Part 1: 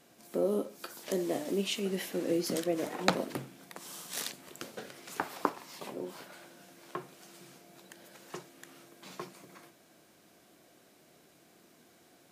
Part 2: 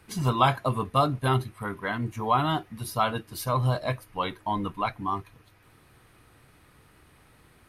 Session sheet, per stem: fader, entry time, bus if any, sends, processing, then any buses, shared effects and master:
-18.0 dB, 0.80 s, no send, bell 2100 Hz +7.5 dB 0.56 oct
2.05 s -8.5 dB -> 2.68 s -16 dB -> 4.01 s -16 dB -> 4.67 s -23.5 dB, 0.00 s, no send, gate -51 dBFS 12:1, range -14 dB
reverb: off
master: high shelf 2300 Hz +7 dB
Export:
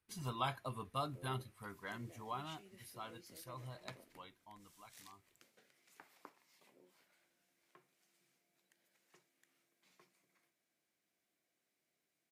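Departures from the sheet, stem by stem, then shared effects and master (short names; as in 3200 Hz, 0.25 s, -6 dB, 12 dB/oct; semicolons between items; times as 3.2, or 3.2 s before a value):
stem 1 -18.0 dB -> -29.0 dB; stem 2 -8.5 dB -> -18.0 dB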